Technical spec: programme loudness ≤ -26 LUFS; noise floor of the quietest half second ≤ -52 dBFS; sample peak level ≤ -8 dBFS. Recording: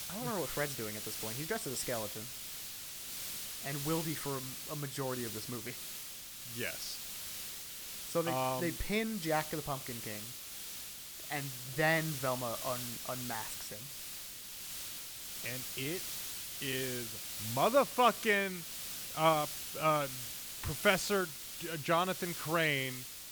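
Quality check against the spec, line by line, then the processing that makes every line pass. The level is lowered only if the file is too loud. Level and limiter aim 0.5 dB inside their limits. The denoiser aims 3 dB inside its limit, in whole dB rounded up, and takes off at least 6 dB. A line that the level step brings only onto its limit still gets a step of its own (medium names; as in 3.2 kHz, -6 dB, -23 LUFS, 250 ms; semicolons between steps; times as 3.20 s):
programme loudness -35.5 LUFS: pass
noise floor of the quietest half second -47 dBFS: fail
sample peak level -12.5 dBFS: pass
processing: noise reduction 8 dB, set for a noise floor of -47 dBFS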